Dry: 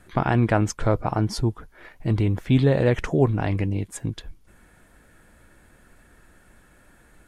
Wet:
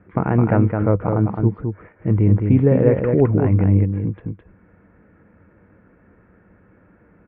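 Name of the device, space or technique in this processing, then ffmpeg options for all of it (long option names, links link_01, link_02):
bass cabinet: -af "lowpass=frequency=2600:width=0.5412,lowpass=frequency=2600:width=1.3066,highpass=61,equalizer=frequency=98:width_type=q:width=4:gain=8,equalizer=frequency=190:width_type=q:width=4:gain=9,equalizer=frequency=300:width_type=q:width=4:gain=4,equalizer=frequency=470:width_type=q:width=4:gain=7,equalizer=frequency=730:width_type=q:width=4:gain=-3,equalizer=frequency=1700:width_type=q:width=4:gain=-5,lowpass=frequency=2200:width=0.5412,lowpass=frequency=2200:width=1.3066,aecho=1:1:212:0.562"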